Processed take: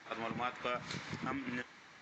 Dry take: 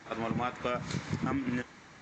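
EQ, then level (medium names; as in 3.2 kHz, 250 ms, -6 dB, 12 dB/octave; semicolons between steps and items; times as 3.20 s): low-pass 4.3 kHz 12 dB/octave; tilt EQ +2.5 dB/octave; -4.0 dB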